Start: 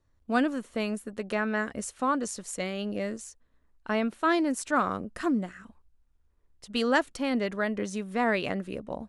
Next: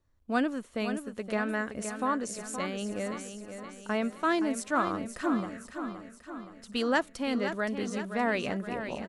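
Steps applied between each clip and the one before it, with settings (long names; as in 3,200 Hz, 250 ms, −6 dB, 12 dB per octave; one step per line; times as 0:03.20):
repeating echo 520 ms, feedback 55%, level −9 dB
level −2.5 dB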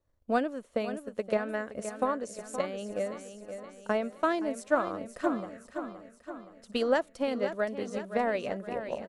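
parametric band 560 Hz +9.5 dB 0.86 octaves
transient designer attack +7 dB, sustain −1 dB
level −6.5 dB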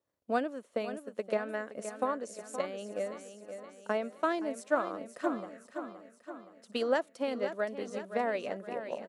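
high-pass filter 210 Hz 12 dB per octave
level −2.5 dB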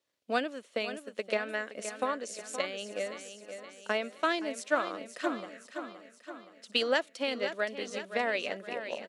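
meter weighting curve D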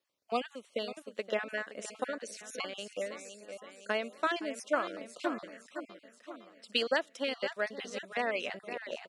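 time-frequency cells dropped at random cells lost 24%
level −1.5 dB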